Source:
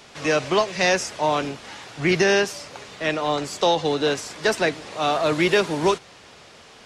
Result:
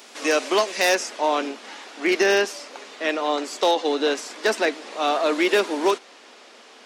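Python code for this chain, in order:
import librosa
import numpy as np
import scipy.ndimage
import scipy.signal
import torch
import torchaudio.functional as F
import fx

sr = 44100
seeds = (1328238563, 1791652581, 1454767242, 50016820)

y = fx.high_shelf(x, sr, hz=7900.0, db=fx.steps((0.0, 11.5), (0.94, -3.0)))
y = 10.0 ** (-11.0 / 20.0) * (np.abs((y / 10.0 ** (-11.0 / 20.0) + 3.0) % 4.0 - 2.0) - 1.0)
y = fx.brickwall_highpass(y, sr, low_hz=210.0)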